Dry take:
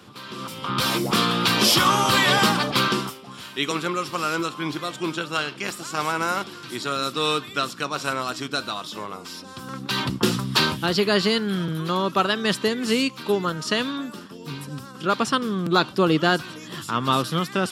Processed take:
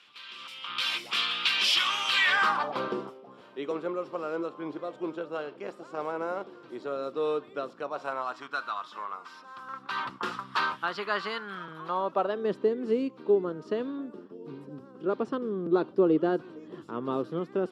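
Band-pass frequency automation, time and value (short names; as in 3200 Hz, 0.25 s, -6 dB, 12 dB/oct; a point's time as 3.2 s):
band-pass, Q 2.1
2.16 s 2700 Hz
2.87 s 510 Hz
7.68 s 510 Hz
8.59 s 1200 Hz
11.64 s 1200 Hz
12.53 s 400 Hz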